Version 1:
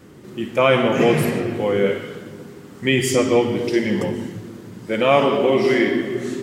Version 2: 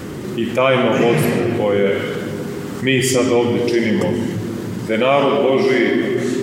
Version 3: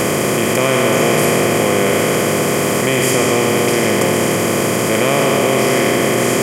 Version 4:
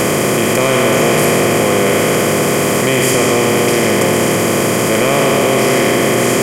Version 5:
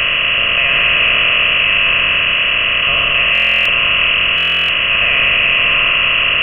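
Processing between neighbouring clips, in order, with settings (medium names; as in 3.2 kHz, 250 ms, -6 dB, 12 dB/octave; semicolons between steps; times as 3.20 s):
level flattener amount 50%
spectral levelling over time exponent 0.2; treble shelf 7.5 kHz +9 dB; trim -7 dB
saturation -6 dBFS, distortion -21 dB; trim +3 dB
frequency inversion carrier 3.1 kHz; Butterworth band-stop 830 Hz, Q 2.2; buffer glitch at 3.33/4.36 s, samples 1024, times 13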